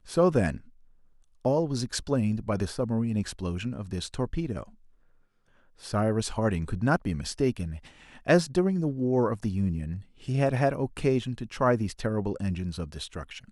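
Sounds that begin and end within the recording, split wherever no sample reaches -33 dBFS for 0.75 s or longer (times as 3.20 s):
1.45–4.63 s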